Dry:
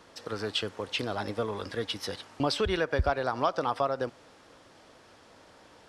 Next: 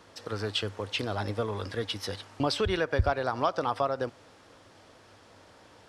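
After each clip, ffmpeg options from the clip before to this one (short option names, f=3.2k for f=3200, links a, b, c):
-af "equalizer=f=100:t=o:w=0.3:g=8.5"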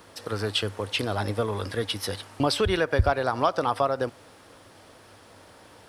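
-af "aexciter=amount=1.3:drive=9.7:freq=8.9k,volume=4dB"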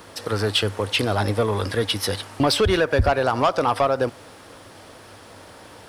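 -af "asoftclip=type=tanh:threshold=-18dB,volume=7dB"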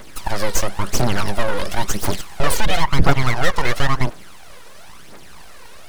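-af "aeval=exprs='abs(val(0))':c=same,aphaser=in_gain=1:out_gain=1:delay=2.2:decay=0.57:speed=0.97:type=triangular,volume=2.5dB"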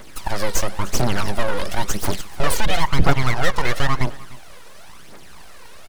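-af "aecho=1:1:300:0.0944,volume=-1.5dB"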